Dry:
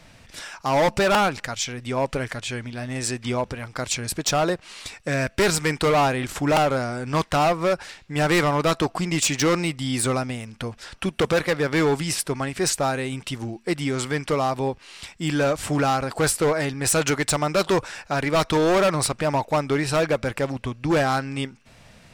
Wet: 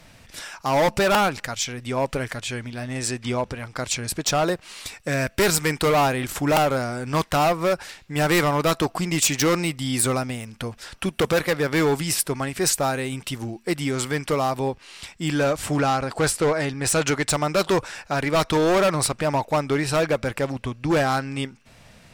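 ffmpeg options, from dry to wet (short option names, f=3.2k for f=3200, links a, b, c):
-af "asetnsamples=n=441:p=0,asendcmd='2.83 equalizer g 1.5;4.44 equalizer g 12.5;14.71 equalizer g 4;15.79 equalizer g -6;17.3 equalizer g 4.5',equalizer=f=15k:t=o:w=0.66:g=8.5"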